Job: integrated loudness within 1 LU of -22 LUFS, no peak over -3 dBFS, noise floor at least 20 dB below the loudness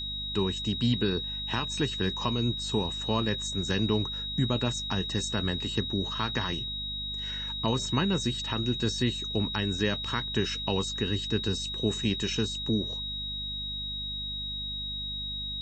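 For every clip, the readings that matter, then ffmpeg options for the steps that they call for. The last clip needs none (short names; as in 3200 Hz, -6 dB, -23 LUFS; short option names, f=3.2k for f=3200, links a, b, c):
hum 50 Hz; harmonics up to 250 Hz; hum level -39 dBFS; steady tone 3800 Hz; tone level -33 dBFS; loudness -29.5 LUFS; peak -13.5 dBFS; loudness target -22.0 LUFS
-> -af "bandreject=f=50:t=h:w=6,bandreject=f=100:t=h:w=6,bandreject=f=150:t=h:w=6,bandreject=f=200:t=h:w=6,bandreject=f=250:t=h:w=6"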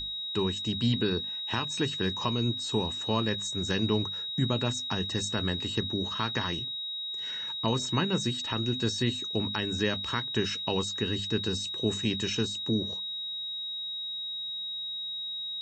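hum none; steady tone 3800 Hz; tone level -33 dBFS
-> -af "bandreject=f=3.8k:w=30"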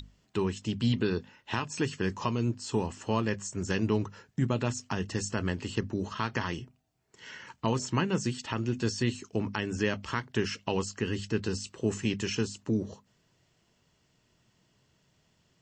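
steady tone none; loudness -32.0 LUFS; peak -14.0 dBFS; loudness target -22.0 LUFS
-> -af "volume=10dB"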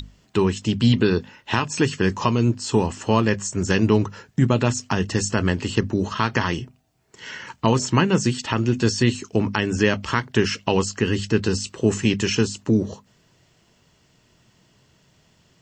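loudness -22.0 LUFS; peak -4.0 dBFS; noise floor -61 dBFS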